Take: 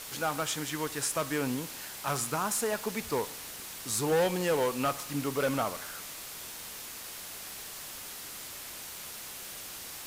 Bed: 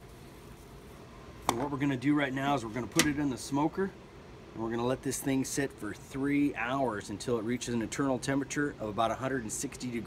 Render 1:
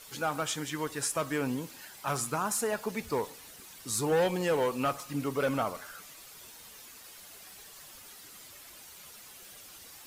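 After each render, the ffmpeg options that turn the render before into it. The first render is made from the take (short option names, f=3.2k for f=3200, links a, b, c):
-af "afftdn=nr=10:nf=-43"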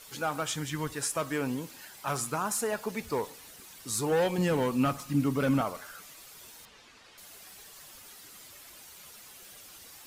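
-filter_complex "[0:a]asplit=3[a][b][c];[a]afade=t=out:st=0.47:d=0.02[d];[b]asubboost=boost=10.5:cutoff=200,afade=t=in:st=0.47:d=0.02,afade=t=out:st=0.92:d=0.02[e];[c]afade=t=in:st=0.92:d=0.02[f];[d][e][f]amix=inputs=3:normalize=0,asettb=1/sr,asplit=3[g][h][i];[g]atrim=end=4.384[j];[h]atrim=start=4.38:end=5.61,asetpts=PTS-STARTPTS,afade=t=in:d=0.004:c=qsin,afade=t=out:st=1.226:d=0.004:c=qsin,lowshelf=f=330:t=q:w=1.5:g=7[k];[i]atrim=start=5.606[l];[j][k]acrossfade=d=0.004:c1=hsin:c2=qsin[m];[m][l]acrossfade=d=0.004:c1=qsin:c2=hsin,asettb=1/sr,asplit=3[n][o][p];[n]atrim=end=6.654[q];[o]atrim=start=6.65:end=7.18,asetpts=PTS-STARTPTS,afade=t=in:d=0.004:c=qsin,afade=t=out:st=0.526:d=0.004:c=qsin,lowpass=4.2k[r];[p]atrim=start=7.176[s];[q][r]acrossfade=d=0.004:c1=hsin:c2=qsin[t];[t][s]acrossfade=d=0.004:c1=qsin:c2=hsin"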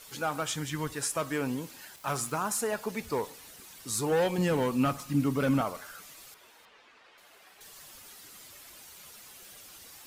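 -filter_complex "[0:a]asettb=1/sr,asplit=3[a][b][c];[a]atrim=end=1.964[d];[b]atrim=start=1.96:end=2.48,asetpts=PTS-STARTPTS,afade=t=in:d=0.004:c=qsin,afade=t=out:st=0.516:d=0.004:c=qsin,aeval=exprs='val(0)*gte(abs(val(0)),0.00501)':c=same[e];[c]atrim=start=2.476[f];[d][e]acrossfade=d=0.004:c1=hsin:c2=qsin[g];[g][f]acrossfade=d=0.004:c1=qsin:c2=hsin,asettb=1/sr,asplit=3[h][i][j];[h]atrim=end=6.344[k];[i]atrim=start=6.34:end=7.61,asetpts=PTS-STARTPTS,afade=t=in:d=0.004:c=qsin,afade=t=out:st=1.266:d=0.004:c=qsin,bass=f=250:g=-14,treble=f=4k:g=-13[l];[j]atrim=start=7.606[m];[k][l]acrossfade=d=0.004:c1=hsin:c2=qsin[n];[n][m]acrossfade=d=0.004:c1=qsin:c2=hsin"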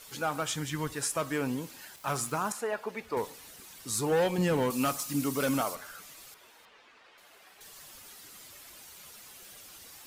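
-filter_complex "[0:a]asettb=1/sr,asplit=3[a][b][c];[a]atrim=end=2.524[d];[b]atrim=start=2.52:end=3.17,asetpts=PTS-STARTPTS,afade=t=in:d=0.004:c=qsin,afade=t=out:st=0.646:d=0.004:c=qsin,bass=f=250:g=-12,treble=f=4k:g=-12[e];[c]atrim=start=3.166[f];[d][e]acrossfade=d=0.004:c1=hsin:c2=qsin[g];[g][f]acrossfade=d=0.004:c1=qsin:c2=hsin,asettb=1/sr,asplit=3[h][i][j];[h]atrim=end=4.704[k];[i]atrim=start=4.7:end=5.75,asetpts=PTS-STARTPTS,afade=t=in:d=0.004:c=qsin,afade=t=out:st=1.046:d=0.004:c=qsin,bass=f=250:g=-8,treble=f=4k:g=11[l];[j]atrim=start=5.746[m];[k][l]acrossfade=d=0.004:c1=hsin:c2=qsin[n];[n][m]acrossfade=d=0.004:c1=qsin:c2=hsin"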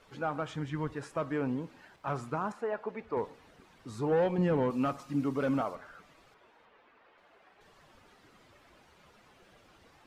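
-af "lowpass=f=1.3k:p=1,aemphasis=mode=reproduction:type=50kf"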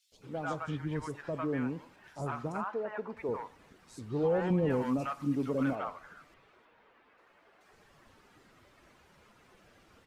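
-filter_complex "[0:a]acrossover=split=740|3700[a][b][c];[a]adelay=120[d];[b]adelay=220[e];[d][e][c]amix=inputs=3:normalize=0"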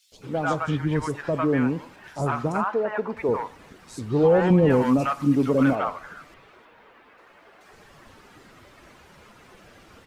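-af "volume=11dB"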